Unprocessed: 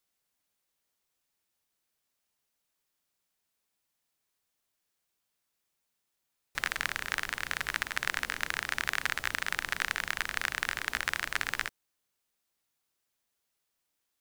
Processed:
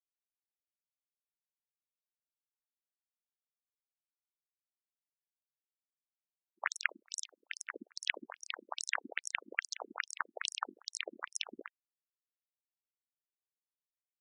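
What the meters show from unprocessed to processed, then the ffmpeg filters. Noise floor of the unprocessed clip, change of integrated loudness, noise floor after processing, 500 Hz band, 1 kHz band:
-82 dBFS, -7.0 dB, under -85 dBFS, -2.5 dB, -7.0 dB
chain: -af "aeval=exprs='0.422*(cos(1*acos(clip(val(0)/0.422,-1,1)))-cos(1*PI/2))+0.0596*(cos(7*acos(clip(val(0)/0.422,-1,1)))-cos(7*PI/2))':c=same,agate=range=0.0794:threshold=0.0112:ratio=16:detection=peak,afftfilt=real='re*between(b*sr/1024,250*pow(7900/250,0.5+0.5*sin(2*PI*2.4*pts/sr))/1.41,250*pow(7900/250,0.5+0.5*sin(2*PI*2.4*pts/sr))*1.41)':imag='im*between(b*sr/1024,250*pow(7900/250,0.5+0.5*sin(2*PI*2.4*pts/sr))/1.41,250*pow(7900/250,0.5+0.5*sin(2*PI*2.4*pts/sr))*1.41)':win_size=1024:overlap=0.75,volume=1.78"

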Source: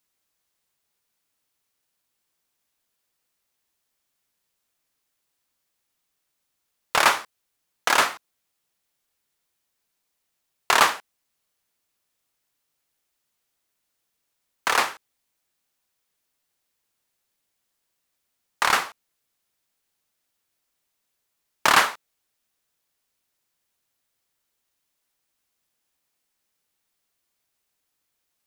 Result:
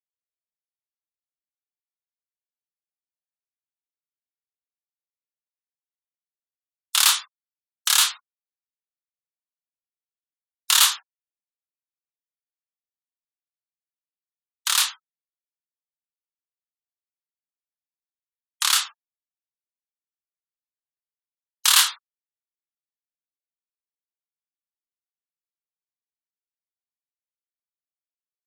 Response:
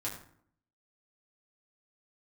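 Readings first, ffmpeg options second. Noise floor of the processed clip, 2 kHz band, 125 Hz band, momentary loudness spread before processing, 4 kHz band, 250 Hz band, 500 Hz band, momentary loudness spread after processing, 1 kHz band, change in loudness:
under -85 dBFS, -5.0 dB, under -40 dB, 11 LU, +7.0 dB, under -40 dB, under -20 dB, 11 LU, -8.5 dB, +2.5 dB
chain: -af "flanger=delay=22.5:depth=6.3:speed=1.2,afftfilt=real='re*gte(hypot(re,im),0.00891)':imag='im*gte(hypot(re,im),0.00891)':win_size=1024:overlap=0.75,highpass=f=1100:w=0.5412,highpass=f=1100:w=1.3066,highshelf=f=2900:t=q:w=1.5:g=6.5,aexciter=amount=2.2:drive=4.2:freq=2900,volume=0.841"

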